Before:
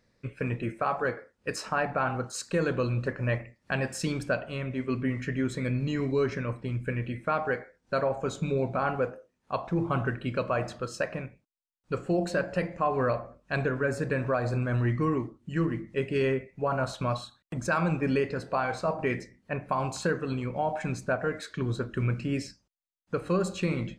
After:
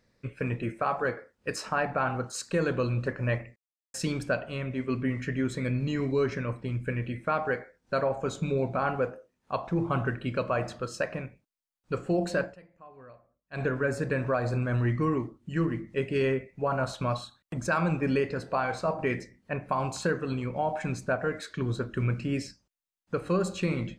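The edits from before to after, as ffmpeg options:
ffmpeg -i in.wav -filter_complex "[0:a]asplit=5[link_01][link_02][link_03][link_04][link_05];[link_01]atrim=end=3.56,asetpts=PTS-STARTPTS,afade=type=out:start_time=3.556:duration=0.004:curve=hsin[link_06];[link_02]atrim=start=3.56:end=3.94,asetpts=PTS-STARTPTS,volume=0[link_07];[link_03]atrim=start=3.94:end=12.56,asetpts=PTS-STARTPTS,afade=type=in:duration=0.004:curve=hsin,afade=type=out:start_time=8.49:duration=0.13:silence=0.0668344[link_08];[link_04]atrim=start=12.56:end=13.51,asetpts=PTS-STARTPTS,volume=-23.5dB[link_09];[link_05]atrim=start=13.51,asetpts=PTS-STARTPTS,afade=type=in:duration=0.13:silence=0.0668344[link_10];[link_06][link_07][link_08][link_09][link_10]concat=n=5:v=0:a=1" out.wav

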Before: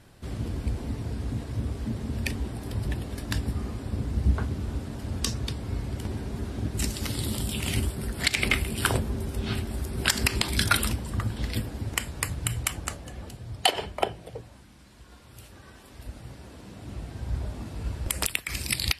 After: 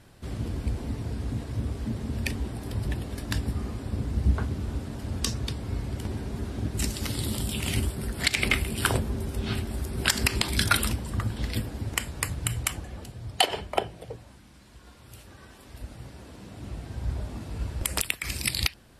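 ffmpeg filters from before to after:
ffmpeg -i in.wav -filter_complex "[0:a]asplit=2[link_01][link_02];[link_01]atrim=end=12.842[link_03];[link_02]atrim=start=13.088[link_04];[link_03][link_04]acrossfade=duration=0.004:curve1=hsin:curve2=hsin" out.wav

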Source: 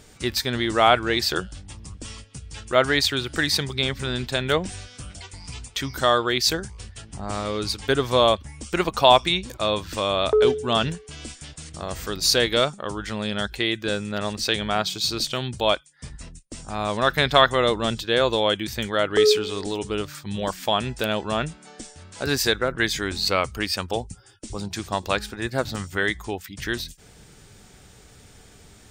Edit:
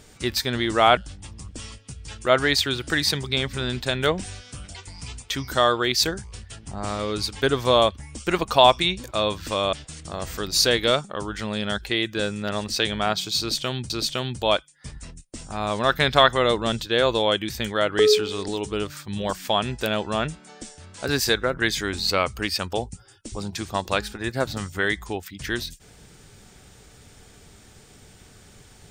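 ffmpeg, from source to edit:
ffmpeg -i in.wav -filter_complex "[0:a]asplit=4[link_01][link_02][link_03][link_04];[link_01]atrim=end=0.972[link_05];[link_02]atrim=start=1.428:end=10.192[link_06];[link_03]atrim=start=11.418:end=15.592[link_07];[link_04]atrim=start=15.078[link_08];[link_05][link_06]acrossfade=duration=0.004:curve1=hsin:curve2=hsin[link_09];[link_09][link_07]acrossfade=duration=0.004:curve1=hsin:curve2=hsin[link_10];[link_10][link_08]acrossfade=duration=0.004:curve1=hsin:curve2=hsin" out.wav

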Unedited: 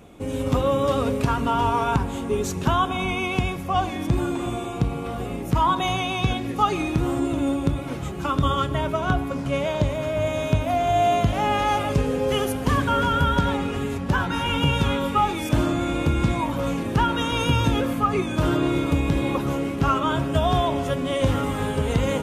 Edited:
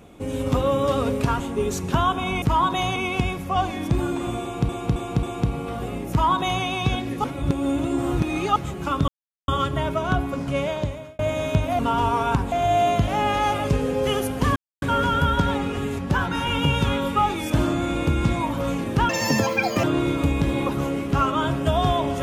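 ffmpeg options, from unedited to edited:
ffmpeg -i in.wav -filter_complex "[0:a]asplit=16[link_01][link_02][link_03][link_04][link_05][link_06][link_07][link_08][link_09][link_10][link_11][link_12][link_13][link_14][link_15][link_16];[link_01]atrim=end=1.402[link_17];[link_02]atrim=start=2.128:end=3.152[link_18];[link_03]atrim=start=5.478:end=6.022[link_19];[link_04]atrim=start=3.148:end=4.882[link_20];[link_05]atrim=start=4.608:end=4.882[link_21];[link_06]atrim=start=4.608:end=4.882[link_22];[link_07]atrim=start=4.608:end=6.622[link_23];[link_08]atrim=start=6.618:end=7.942,asetpts=PTS-STARTPTS,areverse[link_24];[link_09]atrim=start=7.938:end=8.46,asetpts=PTS-STARTPTS,afade=type=out:start_time=0.518:duration=0.004:curve=hsin,apad=pad_dur=0.4[link_25];[link_10]atrim=start=8.46:end=10.17,asetpts=PTS-STARTPTS,afade=type=in:duration=0.004:curve=hsin,afade=type=out:start_time=1.15:duration=0.56[link_26];[link_11]atrim=start=10.17:end=10.772,asetpts=PTS-STARTPTS,afade=type=in:duration=0.004:curve=hsin[link_27];[link_12]atrim=start=1.398:end=2.132[link_28];[link_13]atrim=start=10.768:end=12.81,asetpts=PTS-STARTPTS,afade=type=out:start_time=2.038:duration=0.004:curve=hsin,apad=pad_dur=0.26[link_29];[link_14]atrim=start=12.81:end=17.084,asetpts=PTS-STARTPTS,afade=type=in:duration=0.004:curve=hsin[link_30];[link_15]atrim=start=17.08:end=18.52,asetpts=PTS-STARTPTS,asetrate=85113,aresample=44100[link_31];[link_16]atrim=start=18.516[link_32];[link_17][link_18]acrossfade=duration=0.004:curve1=hsin:curve2=hsin[link_33];[link_33][link_19]acrossfade=duration=0.004:curve1=hsin:curve2=hsin[link_34];[link_34][link_20]acrossfade=duration=0.004:curve1=hsin:curve2=hsin[link_35];[link_35][link_21]acrossfade=duration=0.004:curve1=hsin:curve2=hsin[link_36];[link_36][link_22]acrossfade=duration=0.004:curve1=hsin:curve2=hsin[link_37];[link_37][link_23]acrossfade=duration=0.004:curve1=hsin:curve2=hsin[link_38];[link_38][link_24]acrossfade=duration=0.004:curve1=hsin:curve2=hsin[link_39];[link_25][link_26][link_27]concat=n=3:v=0:a=1[link_40];[link_39][link_40]acrossfade=duration=0.004:curve1=hsin:curve2=hsin[link_41];[link_41][link_28]acrossfade=duration=0.004:curve1=hsin:curve2=hsin[link_42];[link_29][link_30]concat=n=2:v=0:a=1[link_43];[link_42][link_43]acrossfade=duration=0.004:curve1=hsin:curve2=hsin[link_44];[link_44][link_31]acrossfade=duration=0.004:curve1=hsin:curve2=hsin[link_45];[link_45][link_32]acrossfade=duration=0.004:curve1=hsin:curve2=hsin" out.wav

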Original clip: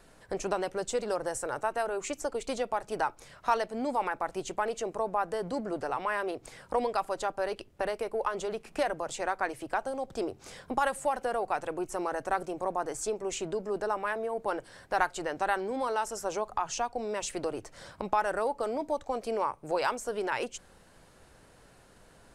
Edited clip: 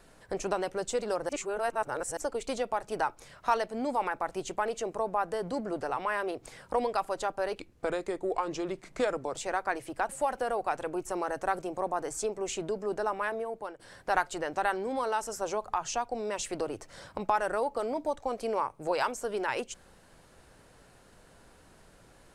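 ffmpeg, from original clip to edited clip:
ffmpeg -i in.wav -filter_complex "[0:a]asplit=7[link_01][link_02][link_03][link_04][link_05][link_06][link_07];[link_01]atrim=end=1.292[link_08];[link_02]atrim=start=1.288:end=2.172,asetpts=PTS-STARTPTS,areverse[link_09];[link_03]atrim=start=2.168:end=7.594[link_10];[link_04]atrim=start=7.59:end=9.08,asetpts=PTS-STARTPTS,asetrate=37485,aresample=44100[link_11];[link_05]atrim=start=9.076:end=9.832[link_12];[link_06]atrim=start=10.928:end=14.63,asetpts=PTS-STARTPTS,afade=type=out:start_time=3.252:duration=0.45:silence=0.149624[link_13];[link_07]atrim=start=14.63,asetpts=PTS-STARTPTS,afade=type=in:duration=0.004:curve=hsin:silence=0.149624[link_14];[link_08][link_09]acrossfade=duration=0.004:curve1=hsin:curve2=hsin[link_15];[link_15][link_10]acrossfade=duration=0.004:curve1=hsin:curve2=hsin[link_16];[link_16][link_11]acrossfade=duration=0.004:curve1=hsin:curve2=hsin[link_17];[link_17][link_12]acrossfade=duration=0.004:curve1=hsin:curve2=hsin[link_18];[link_13][link_14]concat=n=2:v=0:a=1[link_19];[link_18][link_19]acrossfade=duration=0.004:curve1=hsin:curve2=hsin" out.wav

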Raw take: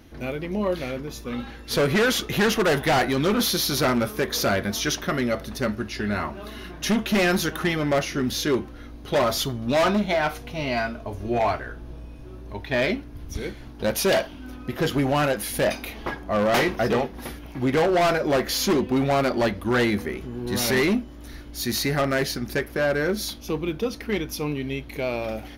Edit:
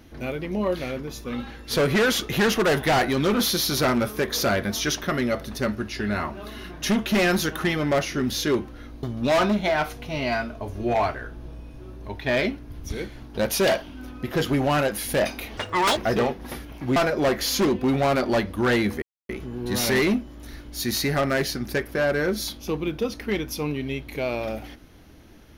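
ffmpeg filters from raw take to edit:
ffmpeg -i in.wav -filter_complex "[0:a]asplit=6[link_01][link_02][link_03][link_04][link_05][link_06];[link_01]atrim=end=9.032[link_07];[link_02]atrim=start=9.478:end=16.024[link_08];[link_03]atrim=start=16.02:end=16.71,asetpts=PTS-STARTPTS,asetrate=75852,aresample=44100,atrim=end_sample=17691,asetpts=PTS-STARTPTS[link_09];[link_04]atrim=start=16.706:end=17.702[link_10];[link_05]atrim=start=18.038:end=20.1,asetpts=PTS-STARTPTS,afade=type=out:start_time=2.058:duration=0.004:curve=hsin,apad=pad_dur=0.27[link_11];[link_06]atrim=start=20.1,asetpts=PTS-STARTPTS,afade=type=in:duration=0.004:curve=hsin[link_12];[link_07][link_08]acrossfade=duration=0.004:curve1=hsin:curve2=hsin[link_13];[link_13][link_09]acrossfade=duration=0.004:curve1=hsin:curve2=hsin[link_14];[link_14][link_10]acrossfade=duration=0.004:curve1=hsin:curve2=hsin[link_15];[link_11][link_12]concat=n=2:v=0:a=1[link_16];[link_15][link_16]acrossfade=duration=0.004:curve1=hsin:curve2=hsin" out.wav

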